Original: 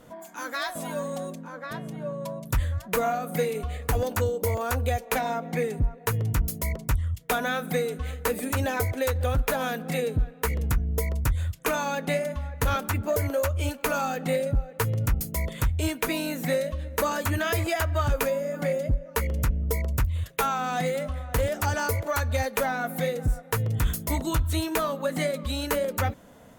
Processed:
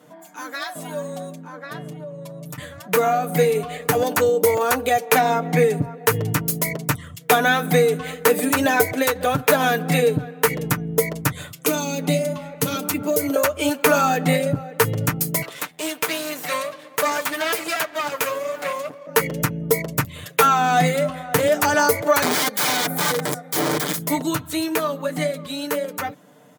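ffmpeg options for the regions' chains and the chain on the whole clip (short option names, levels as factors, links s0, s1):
-filter_complex "[0:a]asettb=1/sr,asplit=3[s0][s1][s2];[s0]atrim=end=1.914[s3];[s1]atrim=start=1.91:end=2.58,asetpts=PTS-STARTPTS,afade=t=in:d=0.004:c=qsin,afade=t=out:st=0.666:d=0.004:c=qsin,aecho=1:1:6.7:0.47,atrim=end_sample=29547,acompressor=threshold=0.0158:ratio=6:attack=3.2:release=140:knee=1:detection=peak,bandreject=f=1600:w=11[s4];[s2]atrim=start=2.576[s5];[s3][s4]acrossfade=d=0.004:c1=hsin:c2=qsin[s6];[s6][s5]acrossfade=d=0.004:c1=qsin:c2=hsin,asettb=1/sr,asplit=3[s7][s8][s9];[s7]atrim=end=11.414[s10];[s8]atrim=start=11.41:end=13.36,asetpts=PTS-STARTPTS,afade=t=in:d=0.004:c=qsin,afade=t=out:st=1.946:d=0.004:c=qsin,highpass=110,bandreject=f=1700:w=6.8,acrossover=split=430|3000[s11][s12][s13];[s12]acompressor=threshold=0.00891:ratio=4:attack=3.2:release=140:knee=2.83:detection=peak[s14];[s11][s14][s13]amix=inputs=3:normalize=0[s15];[s9]atrim=start=13.356[s16];[s10][s15]acrossfade=d=0.004:c1=hsin:c2=qsin[s17];[s17][s16]acrossfade=d=0.004:c1=qsin:c2=hsin,asettb=1/sr,asplit=3[s18][s19][s20];[s18]atrim=end=15.424[s21];[s19]atrim=start=15.42:end=19.07,asetpts=PTS-STARTPTS,afade=t=in:d=0.004:c=qsin,afade=t=out:st=3.646:d=0.004:c=qsin,highpass=470,aeval=exprs='max(val(0),0)':c=same[s22];[s20]atrim=start=19.066[s23];[s21][s22]acrossfade=d=0.004:c1=hsin:c2=qsin[s24];[s24][s23]acrossfade=d=0.004:c1=qsin:c2=hsin,asettb=1/sr,asplit=3[s25][s26][s27];[s25]atrim=end=22.224[s28];[s26]atrim=start=22.22:end=24,asetpts=PTS-STARTPTS,afade=t=in:d=0.004:c=qsin,afade=t=out:st=1.776:d=0.004:c=qsin,aeval=exprs='(mod(16.8*val(0)+1,2)-1)/16.8':c=same,bandreject=f=2700:w=6.8[s29];[s27]atrim=start=23.996[s30];[s28][s29]acrossfade=d=0.004:c1=hsin:c2=qsin[s31];[s31][s30]acrossfade=d=0.004:c1=qsin:c2=hsin,highpass=f=140:w=0.5412,highpass=f=140:w=1.3066,aecho=1:1:6.7:0.55,dynaudnorm=f=350:g=17:m=3.76"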